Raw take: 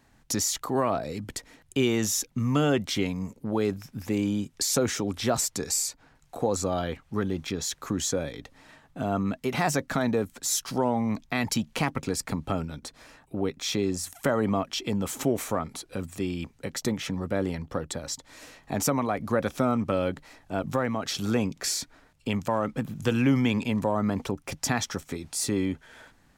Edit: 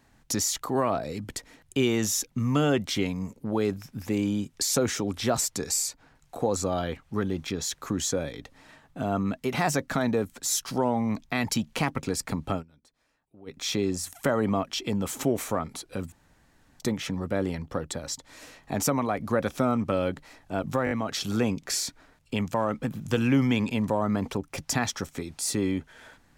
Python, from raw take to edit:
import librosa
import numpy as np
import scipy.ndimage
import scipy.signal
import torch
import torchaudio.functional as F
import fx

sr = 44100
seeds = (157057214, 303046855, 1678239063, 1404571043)

y = fx.edit(x, sr, fx.fade_down_up(start_s=12.51, length_s=1.08, db=-21.5, fade_s=0.13, curve='qsin'),
    fx.room_tone_fill(start_s=16.12, length_s=0.68),
    fx.stutter(start_s=20.85, slice_s=0.02, count=4), tone=tone)